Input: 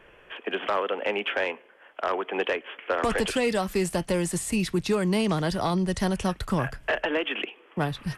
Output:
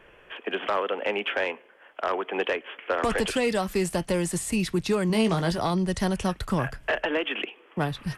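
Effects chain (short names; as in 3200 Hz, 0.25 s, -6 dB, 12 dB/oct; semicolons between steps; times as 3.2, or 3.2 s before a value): 5.08–5.59 doubler 18 ms -6.5 dB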